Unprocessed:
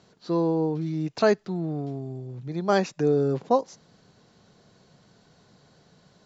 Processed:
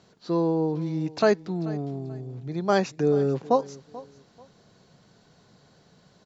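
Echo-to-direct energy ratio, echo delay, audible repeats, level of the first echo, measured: −18.5 dB, 436 ms, 2, −19.0 dB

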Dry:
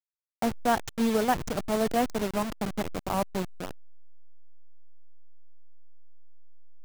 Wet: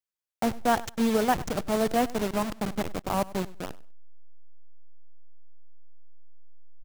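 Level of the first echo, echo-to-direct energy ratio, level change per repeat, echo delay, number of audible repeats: −19.5 dB, −19.5 dB, −14.0 dB, 98 ms, 2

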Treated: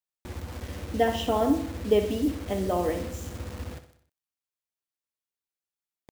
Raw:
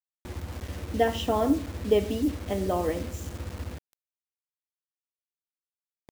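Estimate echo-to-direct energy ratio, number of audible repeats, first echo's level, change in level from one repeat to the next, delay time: −9.5 dB, 5, −11.0 dB, −6.0 dB, 62 ms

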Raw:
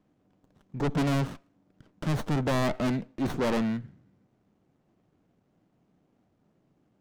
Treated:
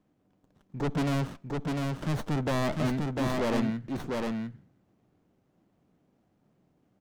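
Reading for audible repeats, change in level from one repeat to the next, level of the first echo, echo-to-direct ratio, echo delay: 1, repeats not evenly spaced, −3.0 dB, −3.0 dB, 700 ms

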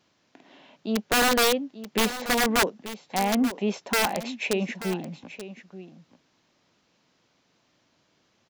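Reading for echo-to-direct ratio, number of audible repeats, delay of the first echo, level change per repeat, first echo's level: −13.5 dB, 1, 883 ms, repeats not evenly spaced, −13.5 dB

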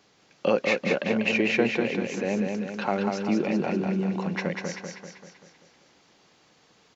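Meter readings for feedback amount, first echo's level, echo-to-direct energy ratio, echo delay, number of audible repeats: 54%, −4.0 dB, −2.5 dB, 194 ms, 6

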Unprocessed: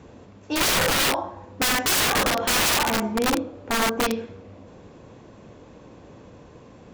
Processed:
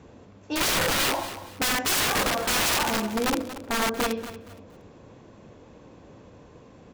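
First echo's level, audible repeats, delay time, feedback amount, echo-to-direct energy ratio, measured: −13.5 dB, 3, 233 ms, 29%, −13.0 dB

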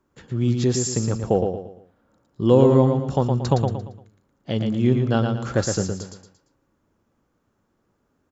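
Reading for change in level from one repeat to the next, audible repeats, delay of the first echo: −9.0 dB, 4, 115 ms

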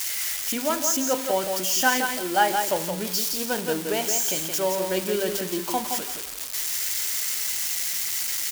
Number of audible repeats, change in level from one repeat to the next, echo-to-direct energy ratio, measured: 2, −14.5 dB, −6.0 dB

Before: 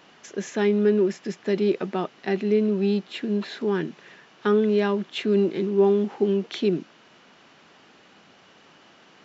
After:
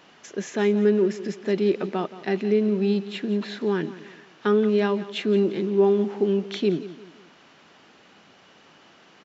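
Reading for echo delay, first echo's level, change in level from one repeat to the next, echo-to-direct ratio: 174 ms, −15.5 dB, −8.5 dB, −15.0 dB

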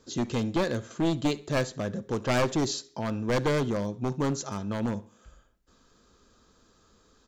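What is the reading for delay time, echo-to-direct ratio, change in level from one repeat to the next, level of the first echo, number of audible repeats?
68 ms, −22.0 dB, −10.0 dB, −22.5 dB, 2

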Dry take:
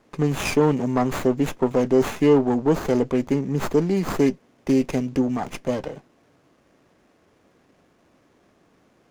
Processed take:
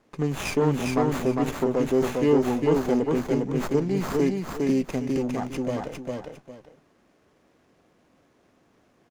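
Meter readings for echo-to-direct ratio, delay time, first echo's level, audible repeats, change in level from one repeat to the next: −2.5 dB, 404 ms, −3.0 dB, 2, −12.0 dB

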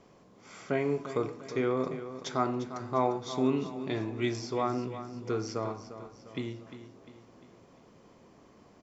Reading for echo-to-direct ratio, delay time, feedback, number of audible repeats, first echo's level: −11.0 dB, 350 ms, 48%, 4, −12.0 dB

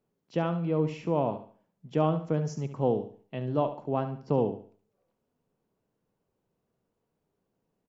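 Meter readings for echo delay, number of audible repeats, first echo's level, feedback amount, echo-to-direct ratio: 71 ms, 3, −11.0 dB, 33%, −10.5 dB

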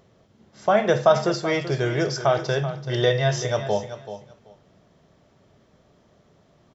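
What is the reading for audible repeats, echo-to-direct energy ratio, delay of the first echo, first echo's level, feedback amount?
2, −12.0 dB, 383 ms, −12.0 dB, 17%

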